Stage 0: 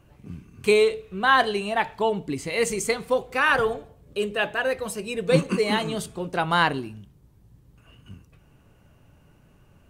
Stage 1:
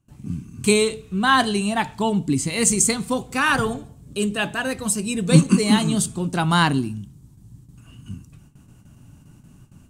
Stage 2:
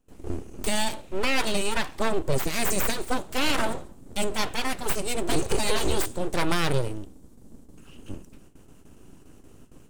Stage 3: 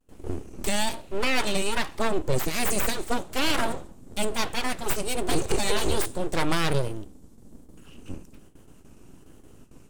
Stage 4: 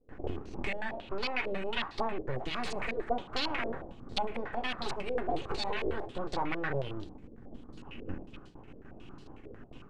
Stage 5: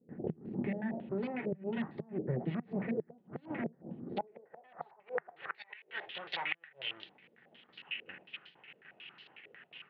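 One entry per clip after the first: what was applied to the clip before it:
gate with hold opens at -47 dBFS; graphic EQ 125/250/500/2000/8000 Hz +6/+8/-10/-5/+11 dB; trim +4 dB
peak limiter -12 dBFS, peak gain reduction 10.5 dB; full-wave rectifier
vibrato 1.2 Hz 84 cents
compression 6:1, threshold -31 dBFS, peak gain reduction 13.5 dB; on a send at -7 dB: reverberation RT60 0.45 s, pre-delay 3 ms; on the sum: step-sequenced low-pass 11 Hz 500–4300 Hz
band-pass sweep 230 Hz -> 2.9 kHz, 3.86–5.92 s; inverted gate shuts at -35 dBFS, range -29 dB; cabinet simulation 120–3800 Hz, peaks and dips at 160 Hz +9 dB, 280 Hz -9 dB, 1.1 kHz -6 dB, 1.9 kHz +8 dB; trim +12 dB

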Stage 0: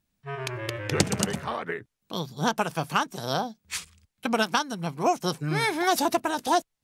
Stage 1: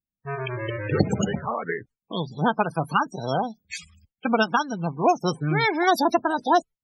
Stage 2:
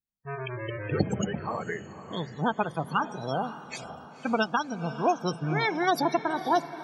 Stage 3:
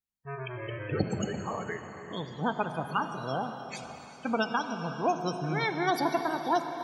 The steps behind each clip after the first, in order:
gate with hold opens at -45 dBFS; loudest bins only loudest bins 32; trim +4 dB
echo that smears into a reverb 524 ms, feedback 50%, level -13 dB; trim -5 dB
gated-style reverb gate 420 ms flat, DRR 7.5 dB; trim -3 dB

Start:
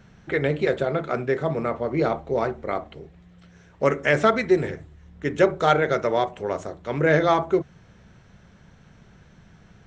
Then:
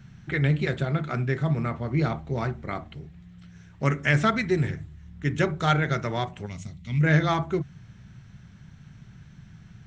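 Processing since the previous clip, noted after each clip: time-frequency box 6.46–7.03 s, 270–1900 Hz -15 dB; graphic EQ 125/500/1000 Hz +9/-12/-3 dB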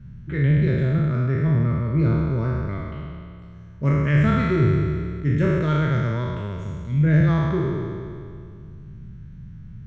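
spectral sustain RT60 2.27 s; Butterworth band-stop 750 Hz, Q 3.9; tilt EQ -3.5 dB/octave; trim -6.5 dB

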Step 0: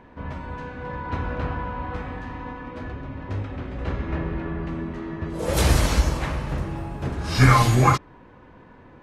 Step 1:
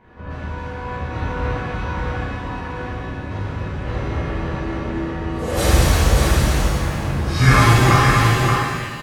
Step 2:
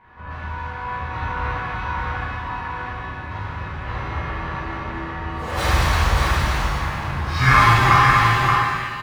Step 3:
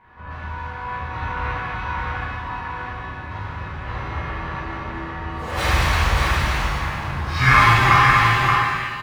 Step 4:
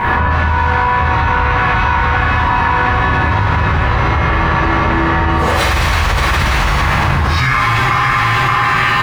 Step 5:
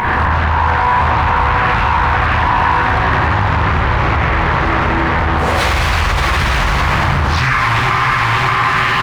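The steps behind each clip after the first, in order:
delay 577 ms -4 dB; pitch-shifted reverb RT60 1.6 s, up +7 st, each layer -8 dB, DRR -10 dB; trim -6.5 dB
median filter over 3 samples; graphic EQ 250/500/1000/2000/4000/8000 Hz -4/-5/+9/+5/+3/-4 dB; reverberation RT60 2.0 s, pre-delay 6 ms, DRR 16 dB; trim -4.5 dB
dynamic bell 2.4 kHz, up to +4 dB, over -33 dBFS, Q 1.4; trim -1 dB
level flattener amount 100%; trim -2 dB
upward compressor, threshold -19 dBFS; speakerphone echo 90 ms, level -6 dB; loudspeaker Doppler distortion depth 0.47 ms; trim -1 dB

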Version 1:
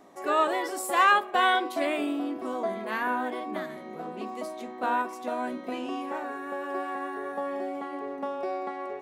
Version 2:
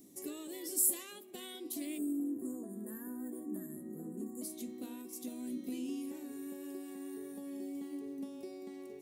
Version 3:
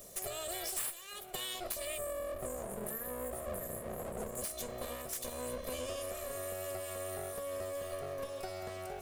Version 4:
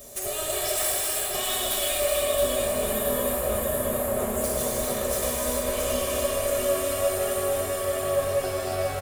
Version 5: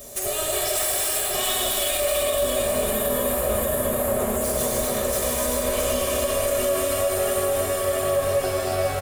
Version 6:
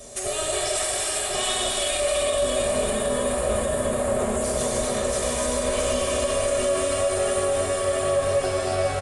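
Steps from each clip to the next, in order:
compression 2.5:1, threshold -34 dBFS, peak gain reduction 12 dB; FFT filter 310 Hz 0 dB, 670 Hz -23 dB, 1.4 kHz -28 dB, 2.1 kHz -14 dB, 12 kHz +14 dB; time-frequency box 1.98–4.42 s, 1.9–6.7 kHz -25 dB
comb filter that takes the minimum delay 1.7 ms; bass shelf 400 Hz -8 dB; compression 8:1, threshold -48 dBFS, peak gain reduction 20.5 dB; trim +12 dB
comb of notches 170 Hz; feedback delay 674 ms, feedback 50%, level -5 dB; gated-style reverb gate 480 ms flat, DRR -5 dB; trim +7.5 dB
peak limiter -17.5 dBFS, peak gain reduction 5 dB; trim +4 dB
resampled via 22.05 kHz

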